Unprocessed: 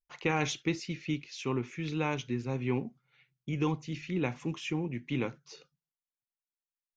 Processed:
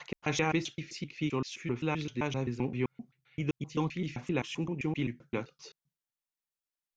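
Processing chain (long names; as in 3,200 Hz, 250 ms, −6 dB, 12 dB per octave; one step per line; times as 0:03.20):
slices reordered back to front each 130 ms, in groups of 2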